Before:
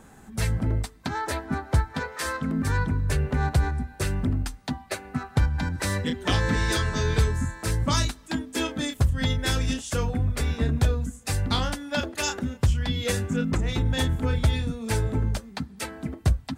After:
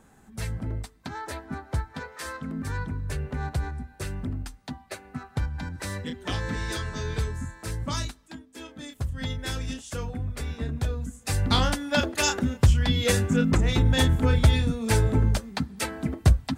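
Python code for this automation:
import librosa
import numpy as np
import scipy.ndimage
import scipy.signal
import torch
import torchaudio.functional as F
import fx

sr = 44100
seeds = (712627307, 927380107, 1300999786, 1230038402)

y = fx.gain(x, sr, db=fx.line((8.07, -6.5), (8.48, -16.5), (9.19, -6.5), (10.82, -6.5), (11.6, 3.5)))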